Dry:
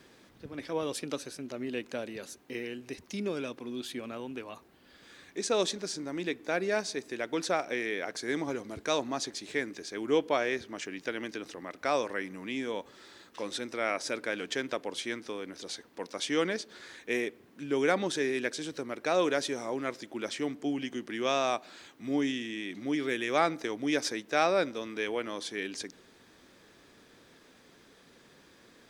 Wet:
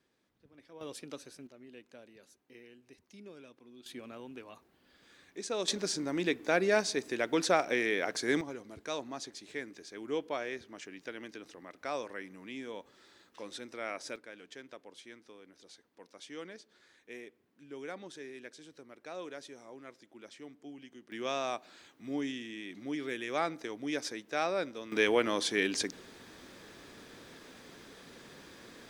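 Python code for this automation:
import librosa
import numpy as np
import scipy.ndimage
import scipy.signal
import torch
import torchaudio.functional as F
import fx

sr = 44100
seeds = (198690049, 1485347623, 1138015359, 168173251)

y = fx.gain(x, sr, db=fx.steps((0.0, -19.0), (0.81, -9.0), (1.47, -17.0), (3.86, -7.0), (5.68, 2.5), (8.41, -8.0), (14.16, -16.0), (21.12, -6.0), (24.92, 6.0)))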